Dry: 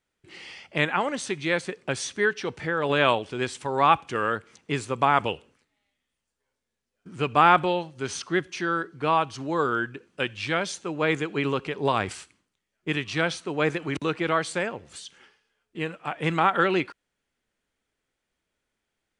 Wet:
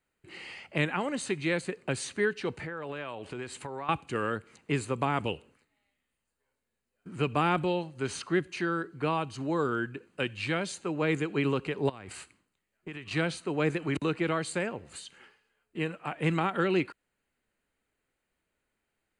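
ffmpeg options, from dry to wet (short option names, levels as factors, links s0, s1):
-filter_complex "[0:a]asettb=1/sr,asplit=3[s0][s1][s2];[s0]atrim=end=2.544[s3];[s1]atrim=start=2.54:end=3.89,asetpts=PTS-STARTPTS,afade=t=in:d=0.004:c=qsin,afade=t=out:st=1.346:d=0.004:c=qsin,acompressor=threshold=0.02:ratio=5:attack=3.2:release=140:knee=1:detection=peak[s4];[s2]atrim=start=3.886[s5];[s3][s4]acrossfade=d=0.004:c1=hsin:c2=qsin[s6];[s6][s5]acrossfade=d=0.004:c1=qsin:c2=hsin,asettb=1/sr,asplit=3[s7][s8][s9];[s7]atrim=end=11.894[s10];[s8]atrim=start=11.89:end=13.11,asetpts=PTS-STARTPTS,afade=t=in:d=0.004:c=qsin,afade=t=out:st=1.216:d=0.004:c=qsin,acompressor=threshold=0.0158:ratio=8:attack=3.2:release=140:knee=1:detection=peak[s11];[s9]atrim=start=13.106[s12];[s10][s11]acrossfade=d=0.004:c1=hsin:c2=qsin[s13];[s13][s12]acrossfade=d=0.004:c1=qsin:c2=hsin,equalizer=f=5600:t=o:w=0.3:g=-13.5,bandreject=f=3400:w=7.4,acrossover=split=410|3000[s14][s15][s16];[s15]acompressor=threshold=0.0141:ratio=2[s17];[s14][s17][s16]amix=inputs=3:normalize=0"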